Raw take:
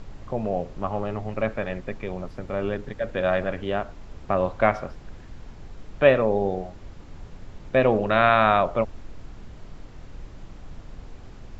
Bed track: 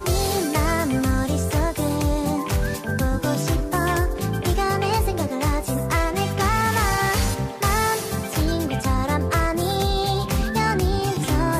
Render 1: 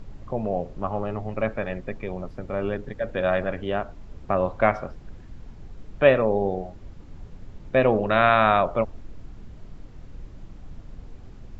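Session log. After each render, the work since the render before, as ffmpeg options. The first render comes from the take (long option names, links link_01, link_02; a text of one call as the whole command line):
ffmpeg -i in.wav -af "afftdn=noise_reduction=6:noise_floor=-44" out.wav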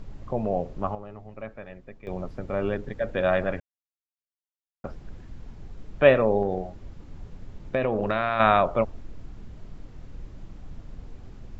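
ffmpeg -i in.wav -filter_complex "[0:a]asettb=1/sr,asplit=3[link_01][link_02][link_03];[link_01]atrim=end=6.424[link_04];[link_02]atrim=start=6.42:end=8.4,asetpts=PTS-STARTPTS,afade=type=in:duration=0.004:curve=qsin,afade=type=out:start_time=1.976:duration=0.004:curve=qsin,acompressor=threshold=-20dB:ratio=6:attack=3.2:release=140:knee=1:detection=peak[link_05];[link_03]atrim=start=8.396[link_06];[link_04][link_05]acrossfade=duration=0.004:curve1=hsin:curve2=qsin[link_07];[link_07][link_06]acrossfade=duration=0.004:curve1=qsin:curve2=hsin,asplit=5[link_08][link_09][link_10][link_11][link_12];[link_08]atrim=end=0.95,asetpts=PTS-STARTPTS,afade=type=out:start_time=0.82:duration=0.13:curve=log:silence=0.237137[link_13];[link_09]atrim=start=0.95:end=2.07,asetpts=PTS-STARTPTS,volume=-12.5dB[link_14];[link_10]atrim=start=2.07:end=3.6,asetpts=PTS-STARTPTS,afade=type=in:duration=0.13:curve=log:silence=0.237137,afade=type=out:start_time=1.526:duration=0.004:curve=hsin[link_15];[link_11]atrim=start=3.6:end=4.84,asetpts=PTS-STARTPTS,volume=0[link_16];[link_12]atrim=start=4.84,asetpts=PTS-STARTPTS,afade=type=in:duration=0.004:curve=hsin[link_17];[link_13][link_14][link_15][link_16][link_17]concat=n=5:v=0:a=1" out.wav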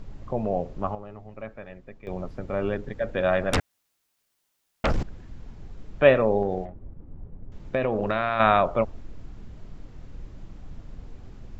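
ffmpeg -i in.wav -filter_complex "[0:a]asettb=1/sr,asplit=3[link_01][link_02][link_03];[link_01]atrim=end=3.534[link_04];[link_02]atrim=start=3.53:end=5.03,asetpts=PTS-STARTPTS,afade=type=in:duration=0.004:curve=qsin,afade=type=out:start_time=1.496:duration=0.004:curve=qsin,aeval=exprs='0.126*sin(PI/2*7.08*val(0)/0.126)':channel_layout=same[link_05];[link_03]atrim=start=5.026[link_06];[link_04][link_05]acrossfade=duration=0.004:curve1=hsin:curve2=qsin[link_07];[link_07][link_06]acrossfade=duration=0.004:curve1=qsin:curve2=hsin,asettb=1/sr,asplit=3[link_08][link_09][link_10];[link_08]atrim=end=6.654[link_11];[link_09]atrim=start=6.65:end=7.52,asetpts=PTS-STARTPTS,afade=type=in:duration=0.004:curve=qsin,afade=type=out:start_time=0.866:duration=0.004:curve=qsin,adynamicsmooth=sensitivity=3.5:basefreq=650[link_12];[link_10]atrim=start=7.516[link_13];[link_11][link_12]acrossfade=duration=0.004:curve1=hsin:curve2=qsin[link_14];[link_14][link_13]acrossfade=duration=0.004:curve1=qsin:curve2=hsin" out.wav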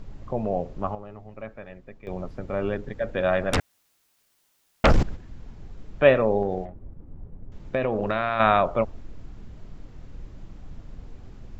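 ffmpeg -i in.wav -filter_complex "[0:a]asplit=3[link_01][link_02][link_03];[link_01]afade=type=out:start_time=3.59:duration=0.02[link_04];[link_02]acontrast=80,afade=type=in:start_time=3.59:duration=0.02,afade=type=out:start_time=5.15:duration=0.02[link_05];[link_03]afade=type=in:start_time=5.15:duration=0.02[link_06];[link_04][link_05][link_06]amix=inputs=3:normalize=0" out.wav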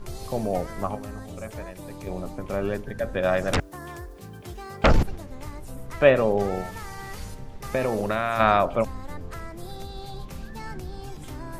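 ffmpeg -i in.wav -i bed.wav -filter_complex "[1:a]volume=-17.5dB[link_01];[0:a][link_01]amix=inputs=2:normalize=0" out.wav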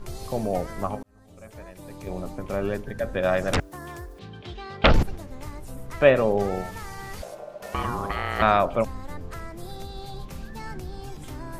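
ffmpeg -i in.wav -filter_complex "[0:a]asettb=1/sr,asplit=3[link_01][link_02][link_03];[link_01]atrim=end=4.194[link_04];[link_02]atrim=start=4.19:end=4.94,asetpts=PTS-STARTPTS,afade=type=in:duration=0.004:curve=qsin,afade=type=out:start_time=0.746:duration=0.004:curve=qsin,lowpass=frequency=3600:width_type=q:width=2.7[link_05];[link_03]atrim=start=4.936[link_06];[link_04][link_05]acrossfade=duration=0.004:curve1=hsin:curve2=qsin[link_07];[link_07][link_06]acrossfade=duration=0.004:curve1=qsin:curve2=hsin,asettb=1/sr,asplit=3[link_08][link_09][link_10];[link_08]atrim=end=7.224[link_11];[link_09]atrim=start=7.22:end=8.42,asetpts=PTS-STARTPTS,afade=type=in:duration=0.004:curve=qsin,afade=type=out:start_time=1.196:duration=0.004:curve=qsin,aeval=exprs='val(0)*sin(2*PI*600*n/s)':channel_layout=same[link_12];[link_10]atrim=start=8.416[link_13];[link_11][link_12]acrossfade=duration=0.004:curve1=hsin:curve2=qsin[link_14];[link_14][link_13]acrossfade=duration=0.004:curve1=qsin:curve2=hsin,asplit=2[link_15][link_16];[link_15]atrim=end=1.03,asetpts=PTS-STARTPTS,afade=type=out:start_time=1.026:duration=0.004:curve=hsin[link_17];[link_16]atrim=start=1.03,asetpts=PTS-STARTPTS,afade=type=in:duration=1.15[link_18];[link_17][link_18]concat=n=2:v=0:a=1" out.wav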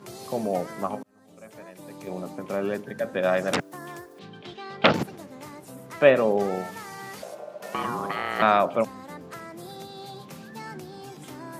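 ffmpeg -i in.wav -af "highpass=frequency=150:width=0.5412,highpass=frequency=150:width=1.3066" out.wav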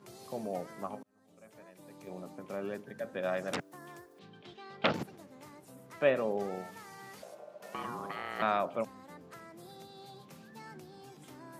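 ffmpeg -i in.wav -af "volume=-10.5dB" out.wav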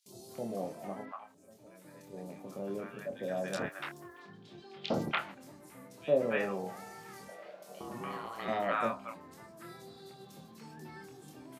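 ffmpeg -i in.wav -filter_complex "[0:a]asplit=2[link_01][link_02];[link_02]adelay=26,volume=-5dB[link_03];[link_01][link_03]amix=inputs=2:normalize=0,acrossover=split=850|3400[link_04][link_05][link_06];[link_04]adelay=60[link_07];[link_05]adelay=290[link_08];[link_07][link_08][link_06]amix=inputs=3:normalize=0" out.wav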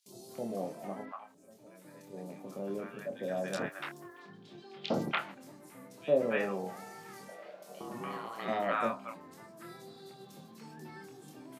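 ffmpeg -i in.wav -af "highpass=150,lowshelf=frequency=220:gain=3.5" out.wav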